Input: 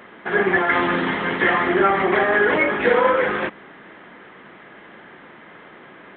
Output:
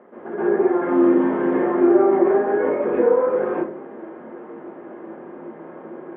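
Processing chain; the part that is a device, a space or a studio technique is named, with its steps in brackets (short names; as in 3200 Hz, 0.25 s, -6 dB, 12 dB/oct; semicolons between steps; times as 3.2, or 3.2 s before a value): HPF 300 Hz 12 dB/oct; television next door (compressor 3:1, threshold -27 dBFS, peak gain reduction 11 dB; LPF 590 Hz 12 dB/oct; reverb RT60 0.45 s, pre-delay 0.12 s, DRR -9.5 dB); 0.78–2.7 doubler 38 ms -6 dB; gain +1.5 dB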